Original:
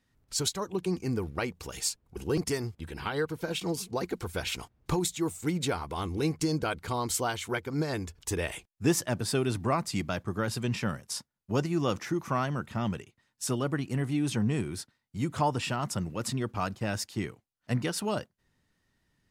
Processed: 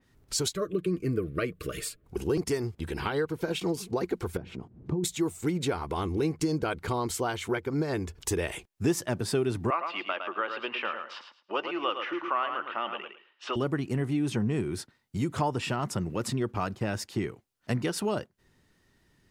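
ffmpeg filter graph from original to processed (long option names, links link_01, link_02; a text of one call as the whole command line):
ffmpeg -i in.wav -filter_complex "[0:a]asettb=1/sr,asplit=3[link_01][link_02][link_03];[link_01]atrim=end=0.554[link_04];[link_02]atrim=start=0.55:end=2.04,asetpts=PTS-STARTPTS,afade=type=in:duration=0.004:curve=qsin,afade=type=out:start_time=1.486:duration=0.004:curve=qsin,asuperstop=centerf=860:order=20:qfactor=2.3,equalizer=frequency=5900:width_type=o:width=0.86:gain=-12.5,aecho=1:1:6.6:0.35,atrim=end_sample=65709[link_05];[link_03]atrim=start=2.036[link_06];[link_04][link_05]acrossfade=duration=0.004:curve1=hsin:curve2=qsin[link_07];[link_07][link_06]acrossfade=duration=0.004:curve1=qsin:curve2=hsin,asettb=1/sr,asplit=3[link_08][link_09][link_10];[link_08]atrim=end=4.374[link_11];[link_09]atrim=start=4.37:end=5.04,asetpts=PTS-STARTPTS,afade=type=in:duration=0.004:curve=qsin,afade=type=out:start_time=0.666:duration=0.004:curve=qsin,bandpass=frequency=190:width_type=q:width=1.5,acompressor=mode=upward:threshold=-40dB:ratio=2.5:attack=3.2:release=140:knee=2.83:detection=peak[link_12];[link_10]atrim=start=5.036[link_13];[link_11][link_12]acrossfade=duration=0.004:curve1=hsin:curve2=qsin[link_14];[link_14][link_13]acrossfade=duration=0.004:curve1=qsin:curve2=hsin,asettb=1/sr,asplit=3[link_15][link_16][link_17];[link_15]atrim=end=9.704[link_18];[link_16]atrim=start=9.7:end=13.56,asetpts=PTS-STARTPTS,afade=type=in:duration=0.004:curve=qsin,afade=type=out:start_time=3.856:duration=0.004:curve=qsin,highpass=frequency=420:width=0.5412,highpass=frequency=420:width=1.3066,equalizer=frequency=420:width_type=q:width=4:gain=-9,equalizer=frequency=700:width_type=q:width=4:gain=-3,equalizer=frequency=1200:width_type=q:width=4:gain=6,equalizer=frequency=2900:width_type=q:width=4:gain=10,lowpass=frequency=3300:width=0.5412,lowpass=frequency=3300:width=1.3066,aecho=1:1:108|216|324:0.398|0.0677|0.0115,atrim=end_sample=170226[link_19];[link_17]atrim=start=13.556[link_20];[link_18][link_19]acrossfade=duration=0.004:curve1=hsin:curve2=qsin[link_21];[link_21][link_20]acrossfade=duration=0.004:curve1=qsin:curve2=hsin,equalizer=frequency=380:width_type=o:width=0.49:gain=5.5,acompressor=threshold=-38dB:ratio=2,adynamicequalizer=threshold=0.00158:dfrequency=3300:dqfactor=0.7:tfrequency=3300:tqfactor=0.7:attack=5:release=100:ratio=0.375:range=3:mode=cutabove:tftype=highshelf,volume=7dB" out.wav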